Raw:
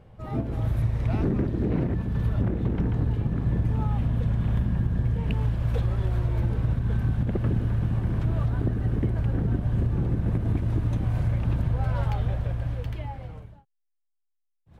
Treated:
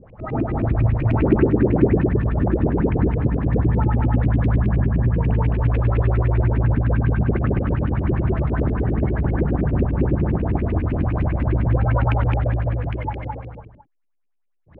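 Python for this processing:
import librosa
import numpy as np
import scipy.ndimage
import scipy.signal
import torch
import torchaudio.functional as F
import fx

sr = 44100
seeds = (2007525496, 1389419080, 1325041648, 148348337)

y = fx.filter_lfo_lowpass(x, sr, shape='saw_up', hz=9.9, low_hz=230.0, high_hz=2700.0, q=6.8)
y = y + 10.0 ** (-4.0 / 20.0) * np.pad(y, (int(215 * sr / 1000.0), 0))[:len(y)]
y = y * librosa.db_to_amplitude(3.0)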